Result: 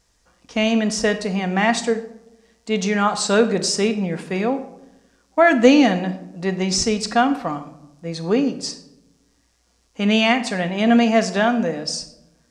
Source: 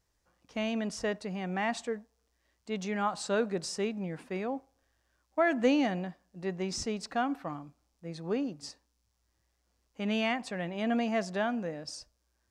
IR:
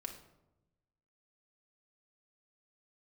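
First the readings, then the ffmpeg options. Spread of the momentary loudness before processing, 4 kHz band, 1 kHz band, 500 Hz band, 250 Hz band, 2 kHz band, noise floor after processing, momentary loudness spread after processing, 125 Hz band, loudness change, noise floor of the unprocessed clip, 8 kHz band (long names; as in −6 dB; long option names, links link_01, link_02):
13 LU, +16.0 dB, +13.0 dB, +13.0 dB, +14.0 dB, +13.5 dB, −63 dBFS, 13 LU, +13.5 dB, +13.5 dB, −77 dBFS, +16.5 dB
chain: -filter_complex "[0:a]asplit=2[link_01][link_02];[1:a]atrim=start_sample=2205,lowpass=8800,highshelf=frequency=3900:gain=11.5[link_03];[link_02][link_03]afir=irnorm=-1:irlink=0,volume=4dB[link_04];[link_01][link_04]amix=inputs=2:normalize=0,volume=6dB"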